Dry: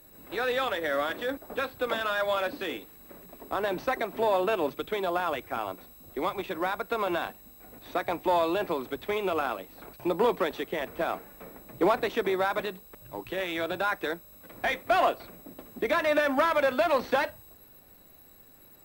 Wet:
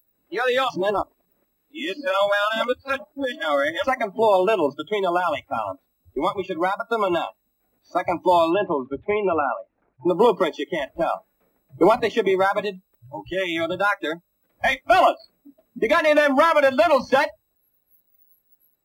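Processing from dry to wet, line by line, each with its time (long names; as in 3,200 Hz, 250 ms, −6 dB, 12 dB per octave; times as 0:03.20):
0:00.70–0:03.84: reverse
0:08.50–0:10.07: low-pass filter 3,600 Hz → 2,000 Hz 24 dB per octave
whole clip: noise reduction from a noise print of the clip's start 28 dB; notch filter 1,100 Hz, Q 23; level +8 dB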